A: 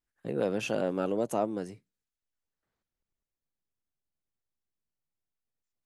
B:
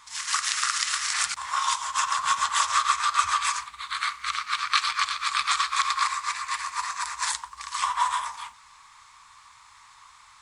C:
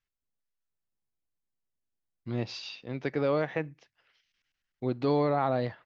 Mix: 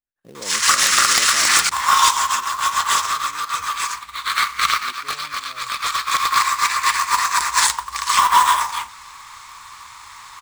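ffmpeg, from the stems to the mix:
-filter_complex "[0:a]volume=0.355[s0];[1:a]aeval=exprs='0.501*sin(PI/2*2.51*val(0)/0.501)':c=same,adelay=350,volume=1.06[s1];[2:a]equalizer=f=2500:w=6.2:g=-7.5,asplit=2[s2][s3];[s3]afreqshift=2[s4];[s2][s4]amix=inputs=2:normalize=1,volume=0.1,asplit=2[s5][s6];[s6]apad=whole_len=474657[s7];[s1][s7]sidechaincompress=threshold=0.00141:ratio=20:attack=20:release=1350[s8];[s0][s8][s5]amix=inputs=3:normalize=0,acrusher=bits=3:mode=log:mix=0:aa=0.000001"

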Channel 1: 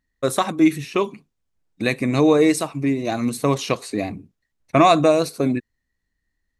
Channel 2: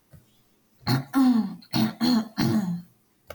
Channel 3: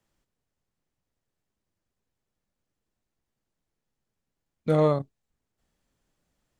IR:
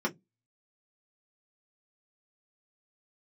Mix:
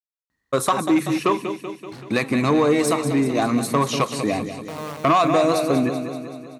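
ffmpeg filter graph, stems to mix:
-filter_complex "[0:a]adelay=300,volume=1.33,asplit=2[s0][s1];[s1]volume=0.299[s2];[1:a]lowpass=4700,asoftclip=type=hard:threshold=0.0335,adelay=1050,volume=0.376,asplit=2[s3][s4];[s4]volume=0.531[s5];[2:a]acrusher=bits=4:dc=4:mix=0:aa=0.000001,volume=0.178,asplit=2[s6][s7];[s7]volume=0.668[s8];[s0][s6]amix=inputs=2:normalize=0,equalizer=f=1100:t=o:w=0.79:g=8,acompressor=threshold=0.2:ratio=2.5,volume=1[s9];[s2][s5][s8]amix=inputs=3:normalize=0,aecho=0:1:191|382|573|764|955|1146|1337|1528|1719:1|0.58|0.336|0.195|0.113|0.0656|0.0381|0.0221|0.0128[s10];[s3][s9][s10]amix=inputs=3:normalize=0,asoftclip=type=tanh:threshold=0.316,highpass=87"

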